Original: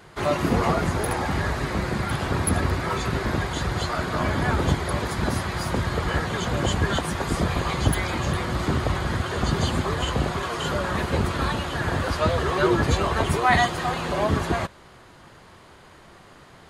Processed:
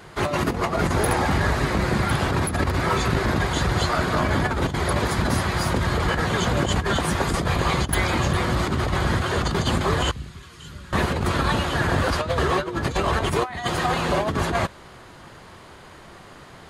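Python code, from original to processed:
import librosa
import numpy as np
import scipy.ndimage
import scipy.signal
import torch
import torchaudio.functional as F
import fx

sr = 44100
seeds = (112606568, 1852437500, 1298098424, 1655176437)

y = fx.tone_stack(x, sr, knobs='6-0-2', at=(10.11, 10.93))
y = fx.over_compress(y, sr, threshold_db=-24.0, ratio=-0.5)
y = y * 10.0 ** (3.0 / 20.0)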